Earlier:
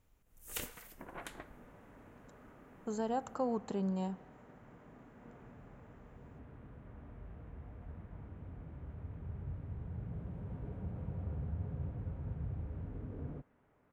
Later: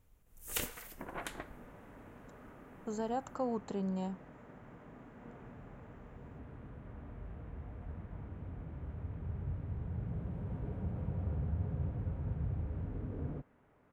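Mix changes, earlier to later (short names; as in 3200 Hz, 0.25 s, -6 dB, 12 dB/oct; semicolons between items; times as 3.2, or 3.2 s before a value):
first sound +4.5 dB; second sound +3.5 dB; reverb: off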